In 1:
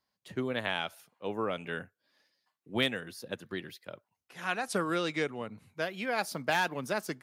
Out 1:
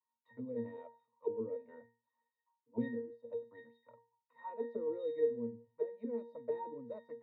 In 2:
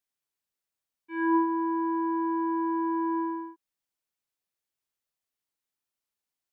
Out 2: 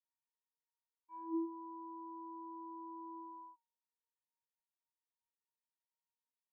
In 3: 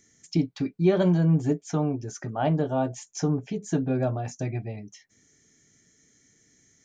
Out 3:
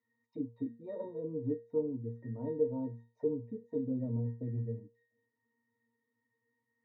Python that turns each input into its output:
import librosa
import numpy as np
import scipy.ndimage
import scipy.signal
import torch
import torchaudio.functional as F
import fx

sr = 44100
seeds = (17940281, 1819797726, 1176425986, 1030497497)

y = fx.octave_resonator(x, sr, note='A#', decay_s=0.36)
y = fx.auto_wah(y, sr, base_hz=350.0, top_hz=1100.0, q=3.6, full_db=-45.5, direction='down')
y = F.gain(torch.from_numpy(y), 18.0).numpy()